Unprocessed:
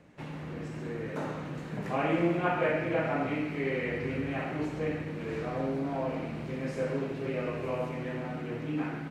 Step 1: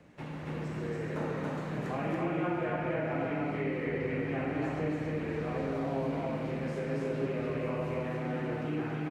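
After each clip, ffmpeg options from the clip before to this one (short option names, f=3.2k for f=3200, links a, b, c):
-filter_complex "[0:a]acrossover=split=250|2200[a][b][c];[a]acompressor=threshold=-39dB:ratio=4[d];[b]acompressor=threshold=-35dB:ratio=4[e];[c]acompressor=threshold=-57dB:ratio=4[f];[d][e][f]amix=inputs=3:normalize=0,aecho=1:1:218.7|279.9:0.316|0.891"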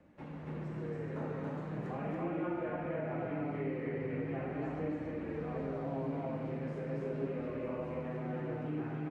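-af "highshelf=f=2.3k:g=-11.5,flanger=delay=3.4:depth=4:regen=-55:speed=0.39:shape=sinusoidal"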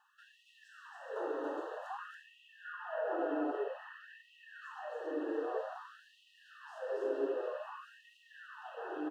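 -af "asuperstop=centerf=2200:order=20:qfactor=3,afftfilt=real='re*gte(b*sr/1024,260*pow(1900/260,0.5+0.5*sin(2*PI*0.52*pts/sr)))':imag='im*gte(b*sr/1024,260*pow(1900/260,0.5+0.5*sin(2*PI*0.52*pts/sr)))':win_size=1024:overlap=0.75,volume=4.5dB"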